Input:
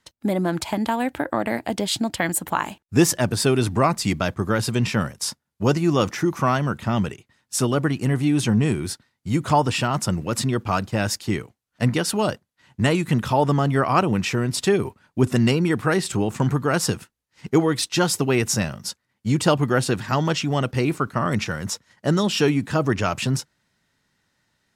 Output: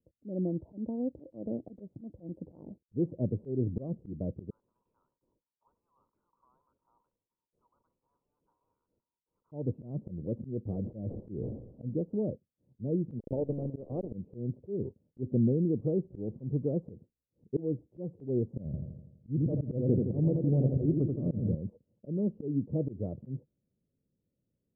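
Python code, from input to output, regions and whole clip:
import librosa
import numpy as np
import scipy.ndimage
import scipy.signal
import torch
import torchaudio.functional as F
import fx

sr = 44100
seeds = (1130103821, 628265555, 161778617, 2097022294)

y = fx.chain(x, sr, fx.cheby_ripple_highpass(hz=930.0, ripple_db=3),
    fx.mod_noise(seeds[0], snr_db=31),
    fx.env_flatten(amount_pct=50), at=(4.5, 9.52))
y = fx.chain(y, sr, fx.delta_mod(bps=32000, step_db=-33.5),
    fx.sustainer(db_per_s=47.0), at=(10.67, 11.83))
y = fx.chain(y, sr, fx.delta_hold(step_db=-19.0),
    fx.transient(attack_db=4, sustain_db=-10),
    fx.low_shelf(hz=230.0, db=-8.5), at=(13.19, 14.13))
y = fx.chain(y, sr, fx.low_shelf(hz=170.0, db=9.5),
    fx.auto_swell(attack_ms=121.0),
    fx.echo_feedback(ms=83, feedback_pct=55, wet_db=-4.0), at=(18.65, 21.55))
y = scipy.signal.sosfilt(scipy.signal.ellip(4, 1.0, 70, 530.0, 'lowpass', fs=sr, output='sos'), y)
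y = fx.auto_swell(y, sr, attack_ms=172.0)
y = y * librosa.db_to_amplitude(-7.0)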